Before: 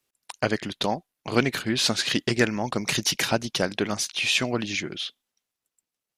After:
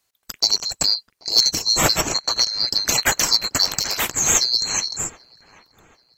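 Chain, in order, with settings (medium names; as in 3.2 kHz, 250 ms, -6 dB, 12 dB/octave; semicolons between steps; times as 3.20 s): split-band scrambler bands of 4 kHz; 2.01–2.60 s: low-pass 3.3 kHz 6 dB/octave; saturation -8 dBFS, distortion -23 dB; on a send: feedback echo behind a low-pass 784 ms, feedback 37%, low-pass 2.3 kHz, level -20 dB; 3.65–4.11 s: on the sum: spectrum-flattening compressor 2:1; trim +6.5 dB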